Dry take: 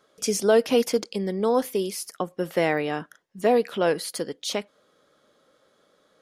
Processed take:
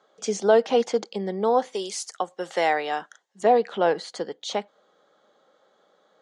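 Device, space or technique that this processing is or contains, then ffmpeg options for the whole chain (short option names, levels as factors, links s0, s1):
television speaker: -filter_complex "[0:a]lowpass=f=7000:w=0.5412,lowpass=f=7000:w=1.3066,highpass=f=180:w=0.5412,highpass=f=180:w=1.3066,equalizer=f=270:t=q:w=4:g=-7,equalizer=f=800:t=q:w=4:g=9,equalizer=f=2500:t=q:w=4:g=-6,equalizer=f=5200:t=q:w=4:g=-8,lowpass=f=8700:w=0.5412,lowpass=f=8700:w=1.3066,asettb=1/sr,asplit=3[s0][s1][s2];[s0]atrim=end=1.744[s3];[s1]atrim=start=1.74:end=3.43,asetpts=PTS-STARTPTS,afade=t=in:d=0.004:c=qsin,afade=t=out:st=1.686:d=0.004:c=qsin,aemphasis=mode=production:type=riaa[s4];[s2]atrim=start=3.426[s5];[s3][s4]acrossfade=d=0.004:c1=hsin:c2=qsin[s6];[s6][s5]acrossfade=d=0.004:c1=qsin:c2=hsin"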